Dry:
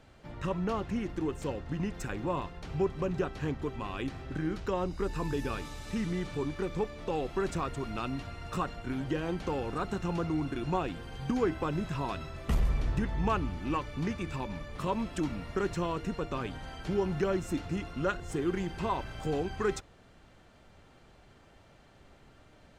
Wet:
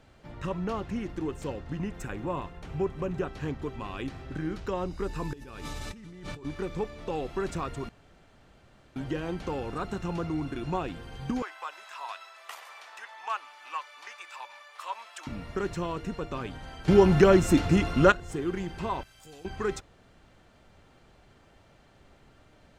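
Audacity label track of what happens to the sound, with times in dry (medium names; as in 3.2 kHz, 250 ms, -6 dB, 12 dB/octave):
1.790000	3.280000	peaking EQ 4.7 kHz -5.5 dB
5.330000	6.450000	compressor with a negative ratio -42 dBFS
7.890000	8.960000	room tone
11.420000	15.270000	high-pass 800 Hz 24 dB/octave
16.880000	18.120000	gain +11.5 dB
19.030000	19.450000	pre-emphasis filter coefficient 0.9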